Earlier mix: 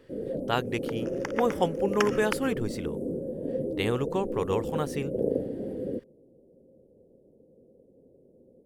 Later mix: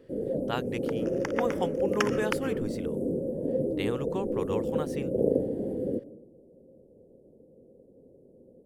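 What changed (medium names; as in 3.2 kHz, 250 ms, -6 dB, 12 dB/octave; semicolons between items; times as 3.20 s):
speech -5.0 dB; first sound: send on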